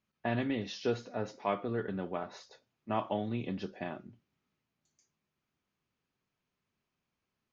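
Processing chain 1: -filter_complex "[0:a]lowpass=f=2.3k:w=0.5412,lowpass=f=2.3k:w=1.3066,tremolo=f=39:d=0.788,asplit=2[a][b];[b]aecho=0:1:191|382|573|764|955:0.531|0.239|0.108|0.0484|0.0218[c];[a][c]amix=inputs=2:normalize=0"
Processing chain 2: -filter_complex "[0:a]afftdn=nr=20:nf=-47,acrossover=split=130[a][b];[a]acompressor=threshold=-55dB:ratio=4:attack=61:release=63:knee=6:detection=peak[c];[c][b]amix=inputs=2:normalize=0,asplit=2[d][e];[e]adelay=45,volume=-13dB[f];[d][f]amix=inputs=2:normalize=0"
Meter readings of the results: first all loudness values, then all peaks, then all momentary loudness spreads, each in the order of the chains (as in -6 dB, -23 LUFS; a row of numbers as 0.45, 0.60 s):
-39.0, -36.5 LUFS; -19.5, -17.0 dBFS; 13, 8 LU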